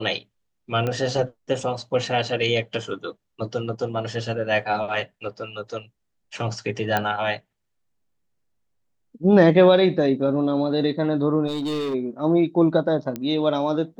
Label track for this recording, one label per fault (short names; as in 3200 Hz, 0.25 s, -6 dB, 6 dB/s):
0.870000	0.870000	pop -14 dBFS
6.970000	6.970000	pop -8 dBFS
11.470000	11.950000	clipped -23 dBFS
13.160000	13.160000	pop -15 dBFS